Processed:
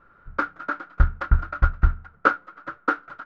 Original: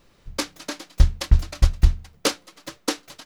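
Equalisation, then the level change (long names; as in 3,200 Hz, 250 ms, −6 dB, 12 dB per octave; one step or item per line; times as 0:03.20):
low-pass with resonance 1,400 Hz, resonance Q 16
−3.0 dB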